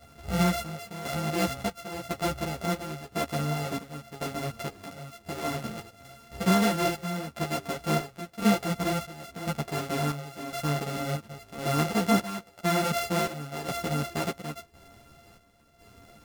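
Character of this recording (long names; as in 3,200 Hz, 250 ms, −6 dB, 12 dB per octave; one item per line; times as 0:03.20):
a buzz of ramps at a fixed pitch in blocks of 64 samples
chopped level 0.95 Hz, depth 65%, duty 60%
a shimmering, thickened sound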